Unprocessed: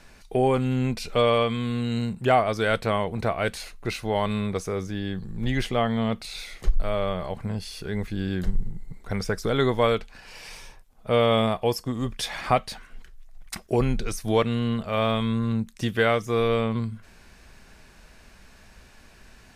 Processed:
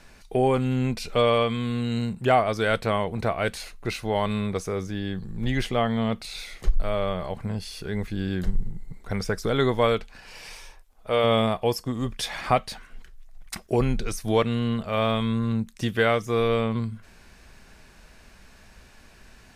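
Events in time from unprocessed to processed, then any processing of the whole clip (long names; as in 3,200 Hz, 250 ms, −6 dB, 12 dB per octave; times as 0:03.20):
0:10.53–0:11.24: parametric band 160 Hz −11 dB 1.5 octaves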